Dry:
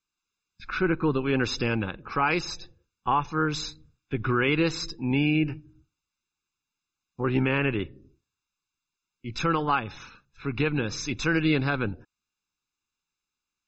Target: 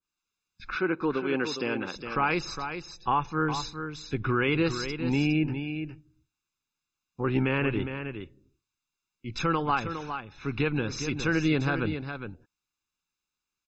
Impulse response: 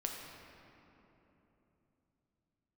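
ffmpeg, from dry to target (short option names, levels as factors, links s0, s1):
-filter_complex "[0:a]asettb=1/sr,asplit=3[s0][s1][s2];[s0]atrim=end=0.754[s3];[s1]atrim=start=0.75:end=1.96,asetpts=PTS-STARTPTS,afade=t=in:d=0.004:c=qsin,afade=t=out:st=1.206:d=0.004:c=qsin,highpass=250[s4];[s2]atrim=start=1.956[s5];[s3][s4]acrossfade=d=0.004:c1=hsin:c2=qsin[s6];[s6][s5]acrossfade=d=0.004:c1=qsin:c2=hsin,asplit=2[s7][s8];[s8]aecho=0:1:410:0.376[s9];[s7][s9]amix=inputs=2:normalize=0,adynamicequalizer=threshold=0.0141:dfrequency=1600:dqfactor=0.7:tfrequency=1600:tqfactor=0.7:attack=5:release=100:ratio=0.375:range=1.5:mode=cutabove:tftype=highshelf,volume=0.841"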